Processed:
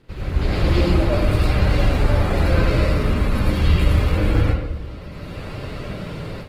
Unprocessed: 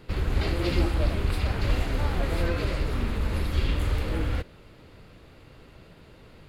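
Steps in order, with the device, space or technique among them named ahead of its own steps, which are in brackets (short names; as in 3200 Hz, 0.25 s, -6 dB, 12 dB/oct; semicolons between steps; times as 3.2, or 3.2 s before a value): speakerphone in a meeting room (reverb RT60 0.95 s, pre-delay 83 ms, DRR -6 dB; AGC gain up to 16.5 dB; gain -4 dB; Opus 16 kbps 48000 Hz)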